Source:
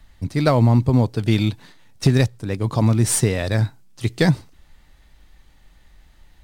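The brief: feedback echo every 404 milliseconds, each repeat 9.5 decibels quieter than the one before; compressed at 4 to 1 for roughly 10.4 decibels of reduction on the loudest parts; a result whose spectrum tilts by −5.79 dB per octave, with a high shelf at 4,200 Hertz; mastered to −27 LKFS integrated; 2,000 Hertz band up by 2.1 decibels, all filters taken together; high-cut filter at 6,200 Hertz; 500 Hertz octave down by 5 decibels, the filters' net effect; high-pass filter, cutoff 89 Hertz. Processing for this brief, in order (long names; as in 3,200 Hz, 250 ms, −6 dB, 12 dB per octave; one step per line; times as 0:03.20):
high-pass filter 89 Hz
low-pass filter 6,200 Hz
parametric band 500 Hz −6.5 dB
parametric band 2,000 Hz +3.5 dB
high-shelf EQ 4,200 Hz −3 dB
downward compressor 4 to 1, threshold −25 dBFS
repeating echo 404 ms, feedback 33%, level −9.5 dB
level +2.5 dB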